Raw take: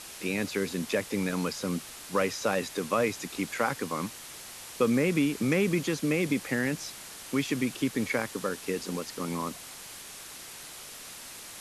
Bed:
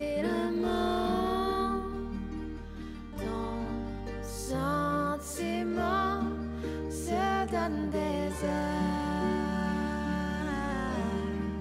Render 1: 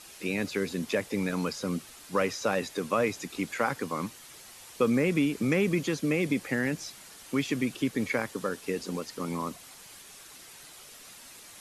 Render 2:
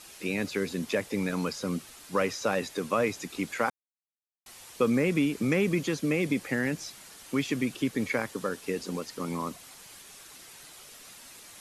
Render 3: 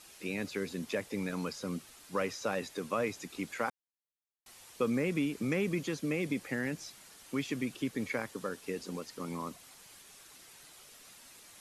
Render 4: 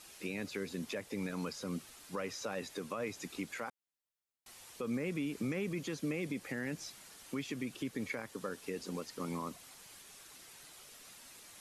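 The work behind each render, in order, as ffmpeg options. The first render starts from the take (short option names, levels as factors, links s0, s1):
-af "afftdn=nr=7:nf=-45"
-filter_complex "[0:a]asplit=3[s0][s1][s2];[s0]atrim=end=3.7,asetpts=PTS-STARTPTS,afade=t=out:st=3.696:d=0.004:c=hsin[s3];[s1]atrim=start=3.7:end=4.46,asetpts=PTS-STARTPTS,volume=0[s4];[s2]atrim=start=4.46,asetpts=PTS-STARTPTS,afade=t=in:d=0.004:c=hsin[s5];[s3][s4][s5]concat=n=3:v=0:a=1"
-af "volume=0.501"
-af "alimiter=level_in=1.68:limit=0.0631:level=0:latency=1:release=180,volume=0.596"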